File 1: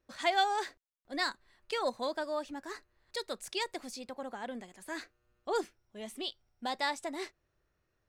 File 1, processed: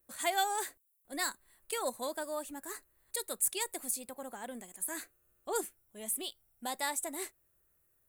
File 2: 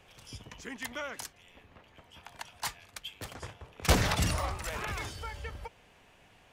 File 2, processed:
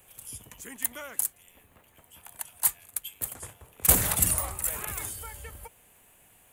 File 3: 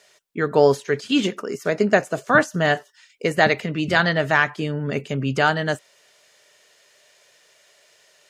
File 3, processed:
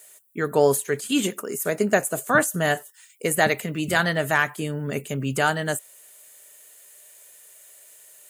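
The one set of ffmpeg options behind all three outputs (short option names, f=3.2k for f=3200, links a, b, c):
-af "aexciter=amount=13.1:drive=5.6:freq=7.8k,volume=-3dB"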